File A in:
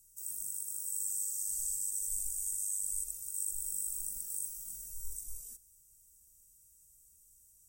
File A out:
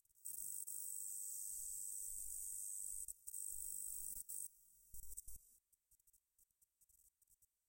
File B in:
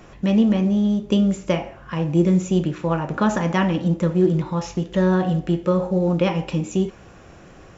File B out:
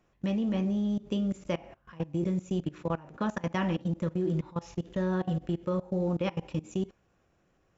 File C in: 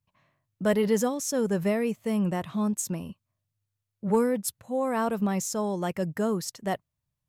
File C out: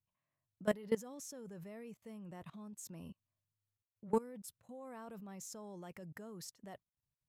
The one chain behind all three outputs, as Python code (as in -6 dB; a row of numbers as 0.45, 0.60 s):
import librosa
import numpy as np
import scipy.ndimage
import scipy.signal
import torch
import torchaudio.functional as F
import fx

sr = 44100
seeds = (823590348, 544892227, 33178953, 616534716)

y = fx.level_steps(x, sr, step_db=21)
y = F.gain(torch.from_numpy(y), -7.0).numpy()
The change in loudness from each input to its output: -11.5, -11.0, -16.0 LU